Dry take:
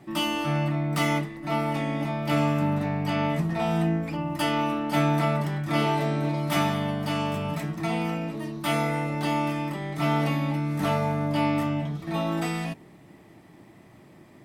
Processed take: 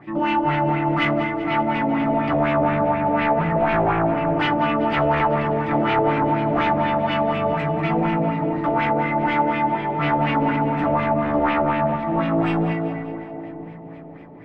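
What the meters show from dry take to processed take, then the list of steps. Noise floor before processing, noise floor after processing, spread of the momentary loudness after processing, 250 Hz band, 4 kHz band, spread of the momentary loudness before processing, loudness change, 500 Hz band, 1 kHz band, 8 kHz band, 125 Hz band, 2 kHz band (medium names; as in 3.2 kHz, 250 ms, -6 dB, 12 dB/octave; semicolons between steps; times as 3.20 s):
-52 dBFS, -37 dBFS, 4 LU, +5.0 dB, -0.5 dB, 6 LU, +6.0 dB, +8.5 dB, +9.5 dB, under -20 dB, +1.0 dB, +7.0 dB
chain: FDN reverb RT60 2.9 s, high-frequency decay 0.3×, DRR 3.5 dB; sine folder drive 6 dB, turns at -11.5 dBFS; LFO low-pass sine 4.1 Hz 540–2700 Hz; on a send: two-band feedback delay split 800 Hz, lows 525 ms, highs 193 ms, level -12 dB; on the sum: trim -6.5 dB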